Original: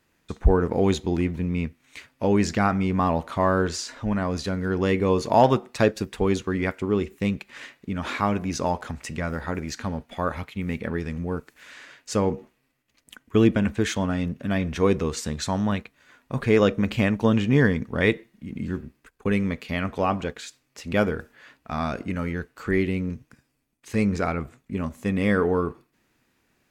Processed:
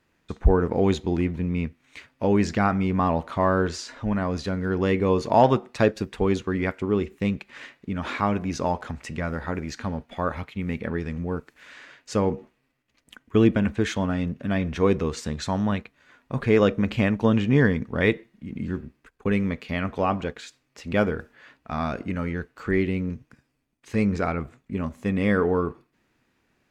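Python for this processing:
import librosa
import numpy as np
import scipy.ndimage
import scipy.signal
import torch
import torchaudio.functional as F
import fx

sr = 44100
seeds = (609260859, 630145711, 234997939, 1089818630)

y = fx.high_shelf(x, sr, hz=7000.0, db=-11.0)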